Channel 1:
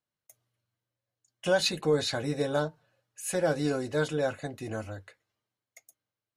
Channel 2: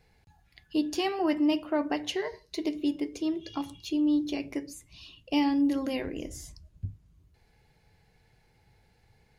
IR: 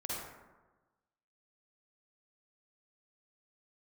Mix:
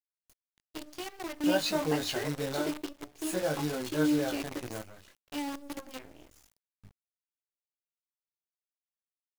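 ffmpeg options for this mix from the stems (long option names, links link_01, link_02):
-filter_complex "[0:a]flanger=delay=19:depth=5.4:speed=0.52,volume=-2dB,asplit=2[link_01][link_02];[1:a]equalizer=frequency=120:width_type=o:width=1.9:gain=-6.5,flanger=delay=16.5:depth=3.9:speed=0.95,aeval=exprs='sgn(val(0))*max(abs(val(0))-0.00224,0)':channel_layout=same,volume=1dB[link_03];[link_02]apad=whole_len=413813[link_04];[link_03][link_04]sidechaingate=range=-9dB:threshold=-57dB:ratio=16:detection=peak[link_05];[link_01][link_05]amix=inputs=2:normalize=0,acrusher=bits=7:dc=4:mix=0:aa=0.000001"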